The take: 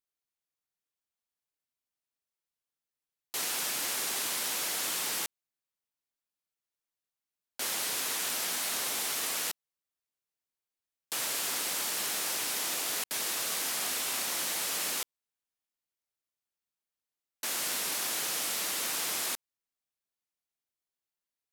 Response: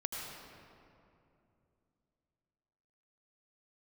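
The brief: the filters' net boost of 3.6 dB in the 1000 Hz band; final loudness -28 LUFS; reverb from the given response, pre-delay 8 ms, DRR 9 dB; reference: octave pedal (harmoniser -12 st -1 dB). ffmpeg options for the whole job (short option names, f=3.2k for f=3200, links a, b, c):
-filter_complex "[0:a]equalizer=f=1k:t=o:g=4.5,asplit=2[a][b];[1:a]atrim=start_sample=2205,adelay=8[c];[b][c]afir=irnorm=-1:irlink=0,volume=-11dB[d];[a][d]amix=inputs=2:normalize=0,asplit=2[e][f];[f]asetrate=22050,aresample=44100,atempo=2,volume=-1dB[g];[e][g]amix=inputs=2:normalize=0"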